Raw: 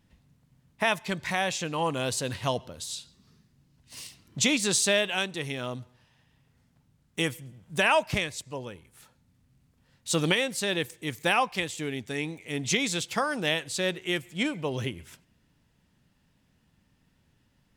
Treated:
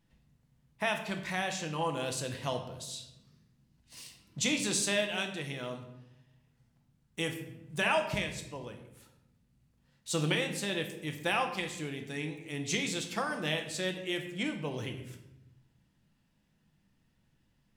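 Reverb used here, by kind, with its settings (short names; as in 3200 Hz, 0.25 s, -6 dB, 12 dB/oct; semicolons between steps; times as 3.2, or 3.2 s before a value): shoebox room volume 270 m³, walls mixed, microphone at 0.73 m; gain -7 dB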